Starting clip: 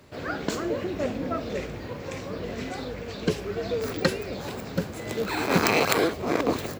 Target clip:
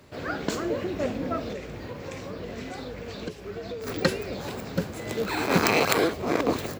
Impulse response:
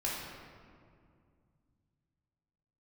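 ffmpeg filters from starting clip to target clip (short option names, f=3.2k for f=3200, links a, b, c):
-filter_complex "[0:a]asettb=1/sr,asplit=3[a][b][c];[a]atrim=end=1.514[d];[b]atrim=start=1.51:end=3.87,asetpts=PTS-STARTPTS,afade=t=in:d=0.004:c=qsin,afade=t=out:st=2.356:d=0.004:c=qsin,acompressor=threshold=-32dB:ratio=10[e];[c]atrim=start=3.866[f];[d][e]acrossfade=d=0.004:c1=hsin:c2=qsin[g];[g][f]acrossfade=d=0.004:c1=qsin:c2=hsin"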